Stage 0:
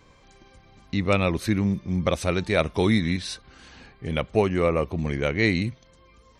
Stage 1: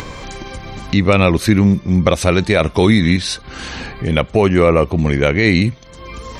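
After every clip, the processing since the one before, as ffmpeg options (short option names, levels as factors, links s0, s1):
-af "acompressor=mode=upward:threshold=0.0355:ratio=2.5,alimiter=level_in=4.22:limit=0.891:release=50:level=0:latency=1,volume=0.891"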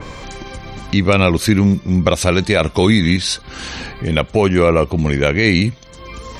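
-af "adynamicequalizer=threshold=0.0251:dfrequency=2800:dqfactor=0.7:tfrequency=2800:tqfactor=0.7:attack=5:release=100:ratio=0.375:range=2:mode=boostabove:tftype=highshelf,volume=0.891"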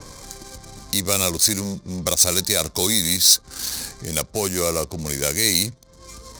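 -filter_complex "[0:a]acrossover=split=340[s0][s1];[s0]asoftclip=type=tanh:threshold=0.158[s2];[s2][s1]amix=inputs=2:normalize=0,adynamicsmooth=sensitivity=6:basefreq=670,aexciter=amount=9.8:drive=8:freq=4300,volume=0.316"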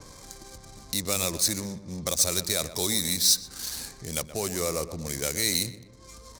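-filter_complex "[0:a]asplit=2[s0][s1];[s1]adelay=124,lowpass=f=1900:p=1,volume=0.251,asplit=2[s2][s3];[s3]adelay=124,lowpass=f=1900:p=1,volume=0.48,asplit=2[s4][s5];[s5]adelay=124,lowpass=f=1900:p=1,volume=0.48,asplit=2[s6][s7];[s7]adelay=124,lowpass=f=1900:p=1,volume=0.48,asplit=2[s8][s9];[s9]adelay=124,lowpass=f=1900:p=1,volume=0.48[s10];[s0][s2][s4][s6][s8][s10]amix=inputs=6:normalize=0,volume=0.447"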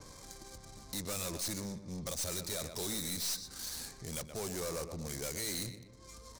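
-af "aeval=exprs='(tanh(28.2*val(0)+0.2)-tanh(0.2))/28.2':c=same,volume=0.596"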